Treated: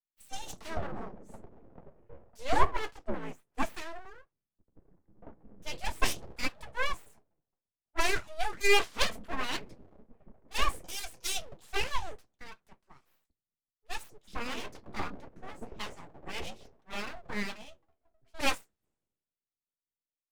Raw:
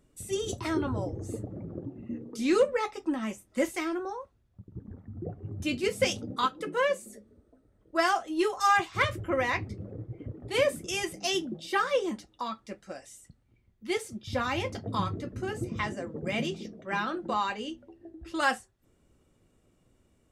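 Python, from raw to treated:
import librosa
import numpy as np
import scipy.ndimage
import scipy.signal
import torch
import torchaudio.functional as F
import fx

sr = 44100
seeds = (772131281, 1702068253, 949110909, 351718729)

y = fx.octave_divider(x, sr, octaves=2, level_db=-3.0, at=(2.52, 3.45))
y = np.abs(y)
y = fx.band_widen(y, sr, depth_pct=100)
y = y * librosa.db_to_amplitude(-4.5)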